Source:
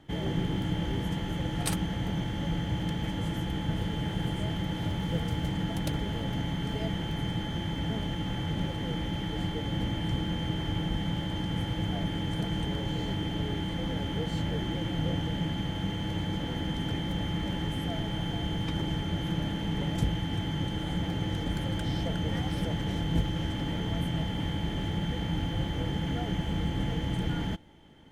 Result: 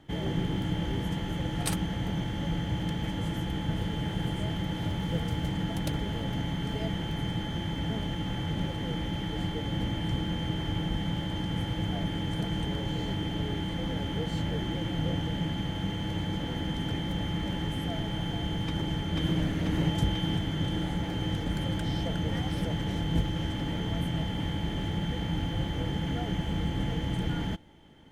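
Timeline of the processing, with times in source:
18.66–19.39 s: echo throw 490 ms, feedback 70%, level -1 dB

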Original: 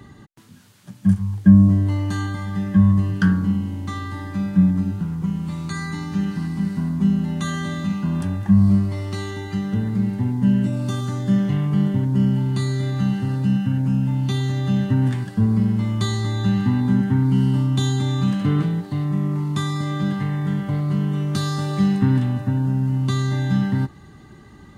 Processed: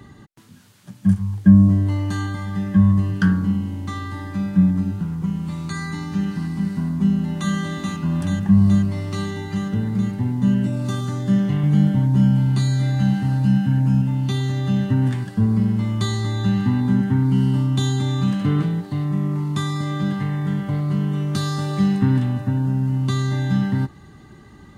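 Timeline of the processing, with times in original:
6.91–7.53 s: echo throw 430 ms, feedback 80%, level -4.5 dB
11.62–14.02 s: doubling 14 ms -2.5 dB

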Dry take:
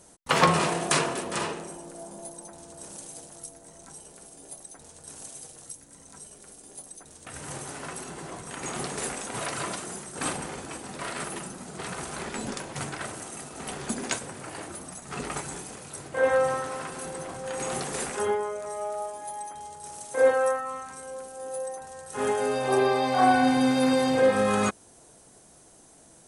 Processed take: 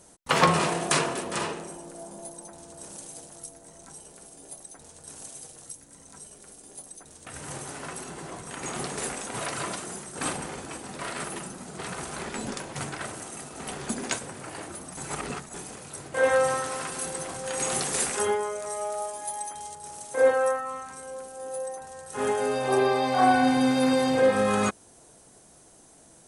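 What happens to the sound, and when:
14.97–15.54 s: reverse
16.14–19.75 s: treble shelf 2.5 kHz +8 dB

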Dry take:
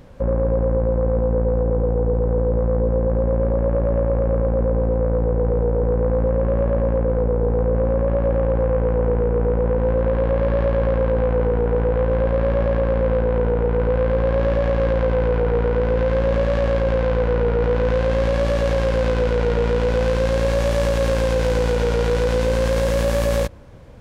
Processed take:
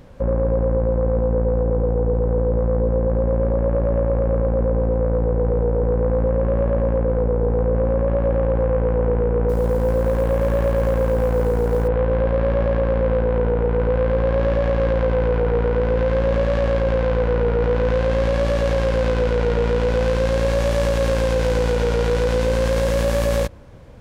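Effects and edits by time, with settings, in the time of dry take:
9.49–11.88 s: short-mantissa float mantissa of 4-bit

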